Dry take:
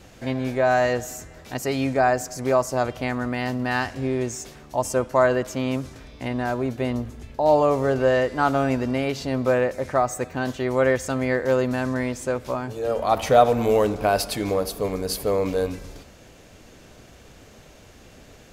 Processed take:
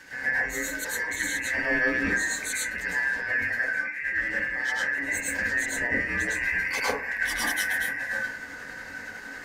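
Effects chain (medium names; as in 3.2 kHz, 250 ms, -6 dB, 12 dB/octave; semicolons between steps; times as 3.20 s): four frequency bands reordered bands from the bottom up 2143; compressor with a negative ratio -30 dBFS, ratio -1; small resonant body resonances 270/510 Hz, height 8 dB; granular stretch 0.51×, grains 185 ms; plate-style reverb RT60 0.51 s, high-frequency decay 0.3×, pre-delay 95 ms, DRR -9 dB; trim -6.5 dB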